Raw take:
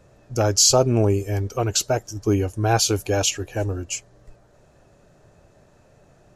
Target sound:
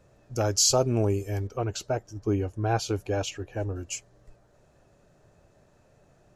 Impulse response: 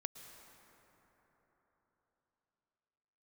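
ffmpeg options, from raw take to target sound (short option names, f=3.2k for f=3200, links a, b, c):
-filter_complex "[0:a]asettb=1/sr,asplit=3[a][b][c];[a]atrim=end=1.474[d];[b]atrim=start=1.47:end=3.76,asetpts=PTS-STARTPTS,afade=t=in:d=0.004:c=qsin,afade=t=out:st=2.286:d=0.004:c=qsin,lowpass=f=2.1k:p=1[e];[c]atrim=start=3.756[f];[d][e]acrossfade=d=0.004:c1=hsin:c2=qsin[g];[g][f]acrossfade=d=0.004:c1=qsin:c2=hsin,volume=-6dB"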